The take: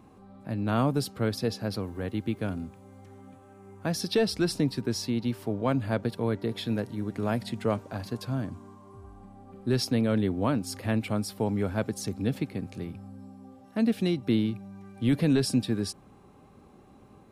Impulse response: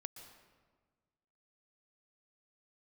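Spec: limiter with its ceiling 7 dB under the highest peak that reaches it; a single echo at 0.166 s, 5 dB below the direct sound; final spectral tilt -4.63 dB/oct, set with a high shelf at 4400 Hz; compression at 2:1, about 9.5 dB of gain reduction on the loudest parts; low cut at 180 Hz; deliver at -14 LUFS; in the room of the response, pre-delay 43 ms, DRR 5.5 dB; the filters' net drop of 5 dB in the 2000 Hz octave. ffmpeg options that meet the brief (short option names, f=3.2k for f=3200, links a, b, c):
-filter_complex "[0:a]highpass=180,equalizer=f=2k:t=o:g=-8.5,highshelf=f=4.4k:g=8,acompressor=threshold=-39dB:ratio=2,alimiter=level_in=6.5dB:limit=-24dB:level=0:latency=1,volume=-6.5dB,aecho=1:1:166:0.562,asplit=2[a][b];[1:a]atrim=start_sample=2205,adelay=43[c];[b][c]afir=irnorm=-1:irlink=0,volume=-1dB[d];[a][d]amix=inputs=2:normalize=0,volume=24.5dB"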